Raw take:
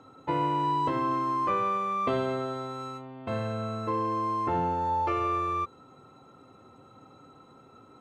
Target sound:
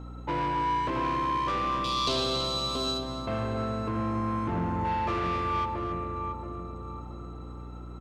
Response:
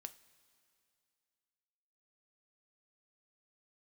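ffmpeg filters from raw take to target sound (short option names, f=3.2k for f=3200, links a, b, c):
-filter_complex "[0:a]asettb=1/sr,asplit=3[a][b][c];[a]atrim=end=3.884[d];[b]atrim=start=3.88:end=4.85,asetpts=PTS-STARTPTS,afade=t=in:d=0.004:c=qsin,afade=t=out:st=0.966:d=0.004:c=qsin,equalizer=f=125:t=o:w=1:g=7,equalizer=f=250:t=o:w=1:g=5,equalizer=f=500:t=o:w=1:g=-8,equalizer=f=1k:t=o:w=1:g=-4,equalizer=f=4k:t=o:w=1:g=-7[e];[c]atrim=start=4.846[f];[d][e]acrossfade=d=0.004:c1=hsin:c2=qsin[g];[g][f]acrossfade=d=0.004:c1=qsin:c2=hsin,asplit=2[h][i];[i]adelay=678,lowpass=f=1.1k:p=1,volume=-5.5dB,asplit=2[j][k];[k]adelay=678,lowpass=f=1.1k:p=1,volume=0.44,asplit=2[l][m];[m]adelay=678,lowpass=f=1.1k:p=1,volume=0.44,asplit=2[n][o];[o]adelay=678,lowpass=f=1.1k:p=1,volume=0.44,asplit=2[p][q];[q]adelay=678,lowpass=f=1.1k:p=1,volume=0.44[r];[j][l][n][p][r]amix=inputs=5:normalize=0[s];[h][s]amix=inputs=2:normalize=0,asoftclip=type=tanh:threshold=-28dB,asettb=1/sr,asplit=3[t][u][v];[t]atrim=end=1.844[w];[u]atrim=start=1.84:end=3.03,asetpts=PTS-STARTPTS,afade=t=in:d=0.004:c=qsin,afade=t=out:st=1.186:d=0.004:c=qsin,highshelf=f=2.8k:t=q:w=3:g=13[x];[v]atrim=start=3.026[y];[w][x]acrossfade=d=0.004:c1=hsin:c2=qsin[z];[z][y]acrossfade=d=0.004:c1=qsin:c2=hsin,aecho=1:1:277:0.282,asplit=2[aa][ab];[1:a]atrim=start_sample=2205[ac];[ab][ac]afir=irnorm=-1:irlink=0,volume=-5dB[ad];[aa][ad]amix=inputs=2:normalize=0,aeval=exprs='val(0)+0.01*(sin(2*PI*60*n/s)+sin(2*PI*2*60*n/s)/2+sin(2*PI*3*60*n/s)/3+sin(2*PI*4*60*n/s)/4+sin(2*PI*5*60*n/s)/5)':c=same"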